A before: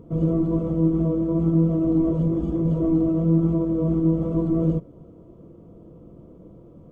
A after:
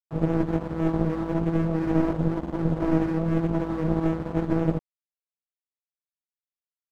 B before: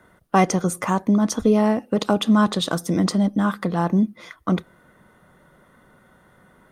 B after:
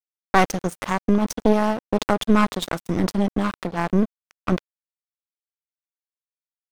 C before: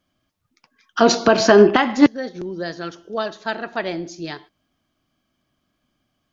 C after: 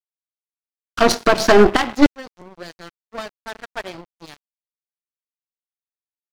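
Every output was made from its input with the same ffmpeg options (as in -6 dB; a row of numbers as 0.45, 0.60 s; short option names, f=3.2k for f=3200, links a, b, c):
-af "aeval=exprs='sgn(val(0))*max(abs(val(0))-0.0447,0)':c=same,aeval=exprs='0.891*(cos(1*acos(clip(val(0)/0.891,-1,1)))-cos(1*PI/2))+0.158*(cos(6*acos(clip(val(0)/0.891,-1,1)))-cos(6*PI/2))':c=same"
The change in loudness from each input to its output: -4.0, -1.5, +2.0 LU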